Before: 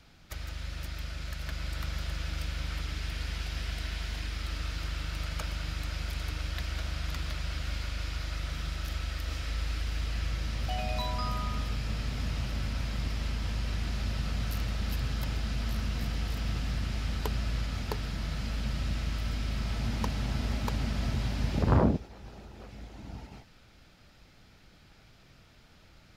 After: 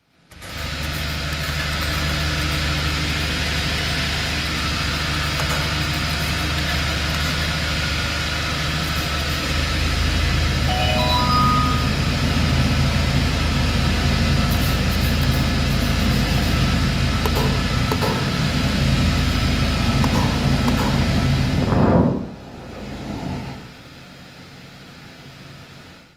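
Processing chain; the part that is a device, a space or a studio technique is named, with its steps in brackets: far-field microphone of a smart speaker (reverb RT60 0.70 s, pre-delay 0.101 s, DRR -4.5 dB; HPF 110 Hz 12 dB/oct; AGC gain up to 15.5 dB; gain -2.5 dB; Opus 32 kbps 48000 Hz)

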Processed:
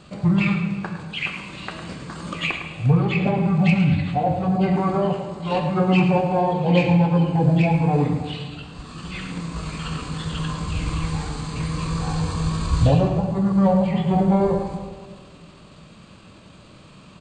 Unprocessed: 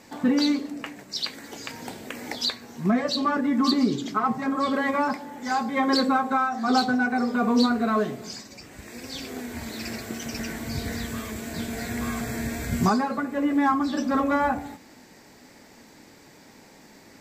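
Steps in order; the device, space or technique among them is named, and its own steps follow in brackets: monster voice (pitch shift -6.5 st; formant shift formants -3 st; low shelf 110 Hz +6 dB; echo 0.107 s -10 dB; reverb RT60 1.8 s, pre-delay 11 ms, DRR 5.5 dB); gain +2.5 dB

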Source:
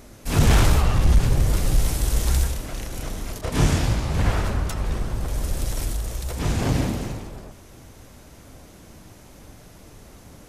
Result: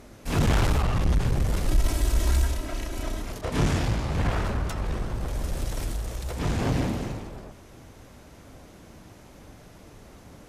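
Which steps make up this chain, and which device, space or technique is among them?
tube preamp driven hard (tube stage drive 14 dB, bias 0.25; low shelf 140 Hz -3 dB; high shelf 5200 Hz -8 dB); 1.68–3.22 comb 3.1 ms, depth 71%

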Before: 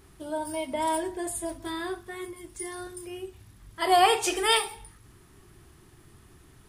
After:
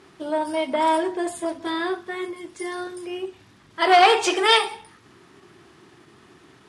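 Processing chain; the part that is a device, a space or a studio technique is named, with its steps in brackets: public-address speaker with an overloaded transformer (core saturation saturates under 1700 Hz; BPF 220–5100 Hz); gain +8.5 dB

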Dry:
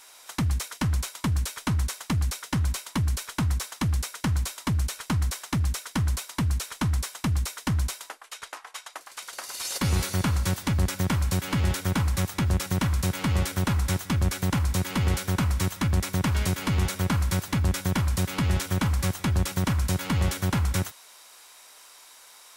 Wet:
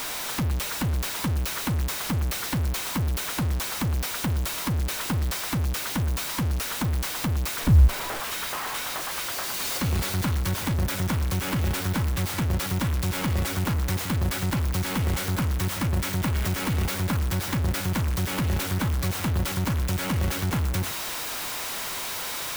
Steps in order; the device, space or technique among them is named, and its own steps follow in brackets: 7.6–8.2 RIAA curve playback; early CD player with a faulty converter (zero-crossing step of -20.5 dBFS; clock jitter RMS 0.036 ms); gain -5 dB

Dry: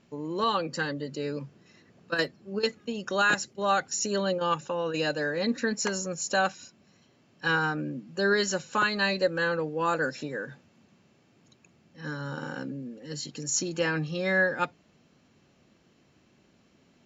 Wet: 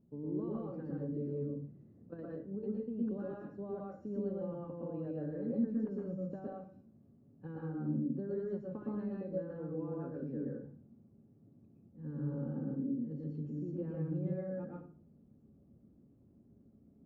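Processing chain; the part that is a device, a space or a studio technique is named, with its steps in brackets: television next door (compressor, threshold -30 dBFS, peak gain reduction 10.5 dB; LPF 300 Hz 12 dB/oct; reverb RT60 0.45 s, pre-delay 0.109 s, DRR -3.5 dB); gain -3 dB

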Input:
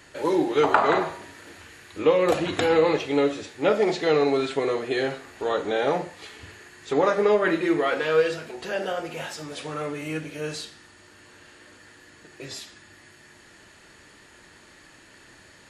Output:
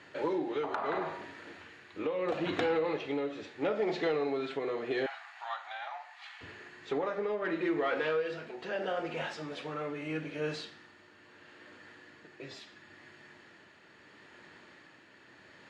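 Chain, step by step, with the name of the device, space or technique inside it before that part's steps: AM radio (BPF 130–3500 Hz; compressor 6:1, threshold -24 dBFS, peak gain reduction 10.5 dB; soft clip -16.5 dBFS, distortion -25 dB; tremolo 0.76 Hz, depth 37%); 5.06–6.41 elliptic high-pass 730 Hz, stop band 40 dB; gain -2 dB

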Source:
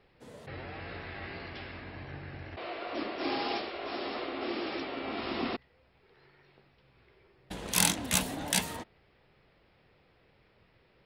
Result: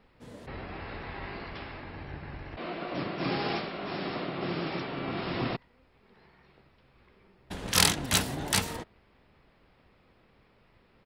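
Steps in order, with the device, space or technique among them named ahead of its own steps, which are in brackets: octave pedal (harmoniser -12 st -1 dB)

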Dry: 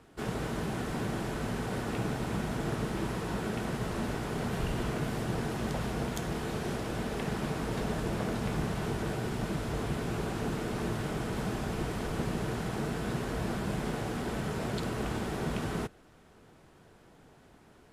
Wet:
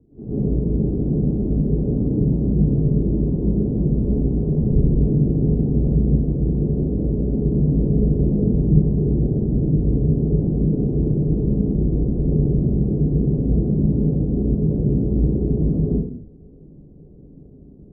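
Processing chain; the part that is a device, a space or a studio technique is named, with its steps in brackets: next room (LPF 370 Hz 24 dB/oct; reverb RT60 0.60 s, pre-delay 0.104 s, DRR -11 dB); gain +4.5 dB

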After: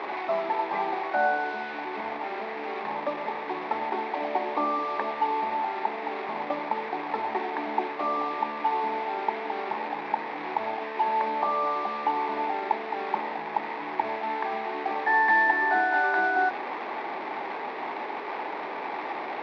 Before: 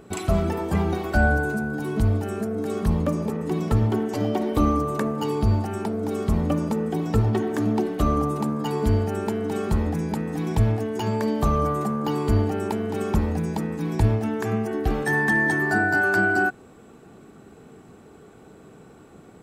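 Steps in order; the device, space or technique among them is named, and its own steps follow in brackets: digital answering machine (BPF 330–3000 Hz; delta modulation 32 kbps, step -26 dBFS; speaker cabinet 430–3100 Hz, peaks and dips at 460 Hz -6 dB, 880 Hz +10 dB, 1400 Hz -7 dB, 2100 Hz +4 dB, 3000 Hz -9 dB)

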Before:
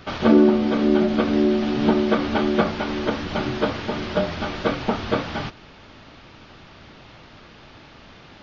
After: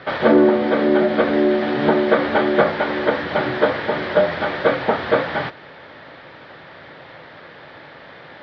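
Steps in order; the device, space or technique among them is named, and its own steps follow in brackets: overdrive pedal into a guitar cabinet (overdrive pedal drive 14 dB, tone 2300 Hz, clips at -2.5 dBFS; speaker cabinet 76–4300 Hz, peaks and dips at 150 Hz +6 dB, 210 Hz -4 dB, 530 Hz +7 dB, 1200 Hz -3 dB, 1800 Hz +6 dB, 2700 Hz -7 dB)

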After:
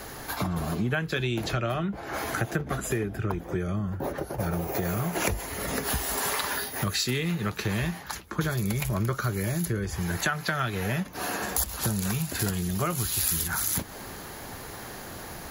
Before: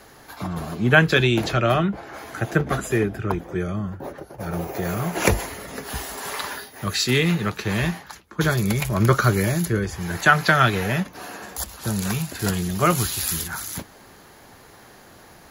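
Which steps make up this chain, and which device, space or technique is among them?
ASMR close-microphone chain (low shelf 110 Hz +5 dB; compressor 6:1, threshold -33 dBFS, peak gain reduction 22.5 dB; high shelf 11000 Hz +7.5 dB); gain +6.5 dB

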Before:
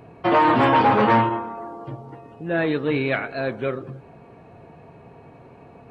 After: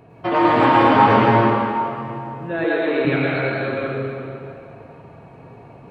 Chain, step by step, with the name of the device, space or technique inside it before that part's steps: stairwell (reverb RT60 2.6 s, pre-delay 99 ms, DRR -5 dB); 2.64–3.05 resonant low shelf 250 Hz -12.5 dB, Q 1.5; gain -2.5 dB

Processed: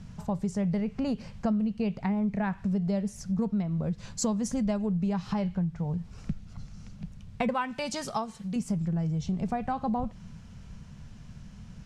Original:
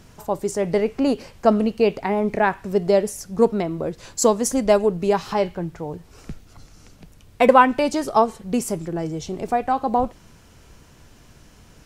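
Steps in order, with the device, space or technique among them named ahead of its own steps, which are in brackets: jukebox (LPF 7100 Hz 12 dB/oct; resonant low shelf 250 Hz +8.5 dB, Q 3; compressor 5:1, threshold -21 dBFS, peak gain reduction 13.5 dB); 7.54–8.56 tilt +2.5 dB/oct; gain -5.5 dB

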